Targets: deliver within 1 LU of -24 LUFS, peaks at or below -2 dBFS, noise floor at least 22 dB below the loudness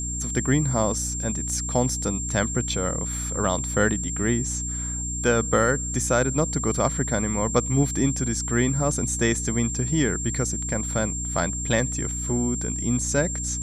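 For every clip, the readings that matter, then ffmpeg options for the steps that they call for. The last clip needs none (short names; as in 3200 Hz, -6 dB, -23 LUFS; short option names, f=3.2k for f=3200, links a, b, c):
hum 60 Hz; harmonics up to 300 Hz; hum level -29 dBFS; steady tone 7400 Hz; tone level -29 dBFS; loudness -24.0 LUFS; peak -6.5 dBFS; loudness target -24.0 LUFS
-> -af "bandreject=f=60:t=h:w=6,bandreject=f=120:t=h:w=6,bandreject=f=180:t=h:w=6,bandreject=f=240:t=h:w=6,bandreject=f=300:t=h:w=6"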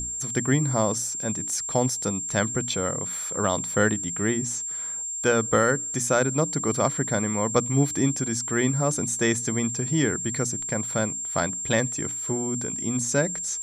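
hum none; steady tone 7400 Hz; tone level -29 dBFS
-> -af "bandreject=f=7.4k:w=30"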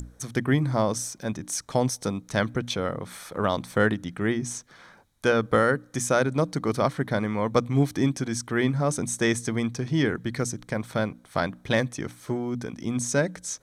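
steady tone none; loudness -26.5 LUFS; peak -7.5 dBFS; loudness target -24.0 LUFS
-> -af "volume=2.5dB"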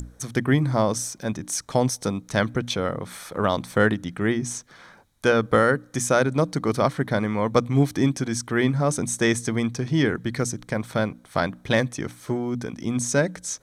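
loudness -24.0 LUFS; peak -5.0 dBFS; noise floor -54 dBFS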